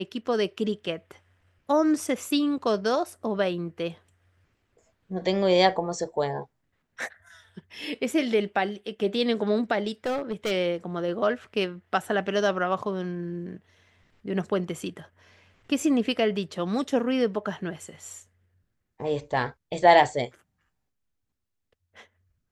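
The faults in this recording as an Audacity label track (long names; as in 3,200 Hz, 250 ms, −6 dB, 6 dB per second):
10.060000	10.520000	clipping −24 dBFS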